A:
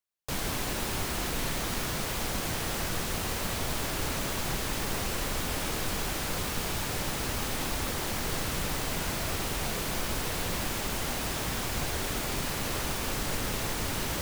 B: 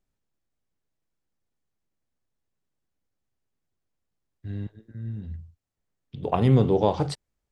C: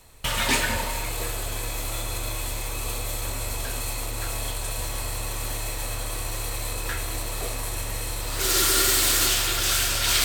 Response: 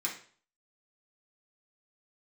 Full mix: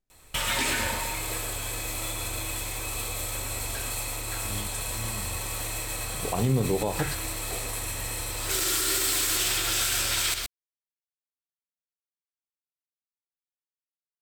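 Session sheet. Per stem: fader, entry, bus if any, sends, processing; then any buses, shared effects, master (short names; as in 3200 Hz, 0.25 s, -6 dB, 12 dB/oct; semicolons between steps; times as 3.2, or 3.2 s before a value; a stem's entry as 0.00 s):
off
+2.0 dB, 0.00 s, no send, no echo send, upward expander 1.5:1, over -28 dBFS
-3.5 dB, 0.10 s, send -9.5 dB, echo send -7.5 dB, dry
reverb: on, RT60 0.45 s, pre-delay 3 ms
echo: echo 0.121 s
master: limiter -16 dBFS, peak gain reduction 8.5 dB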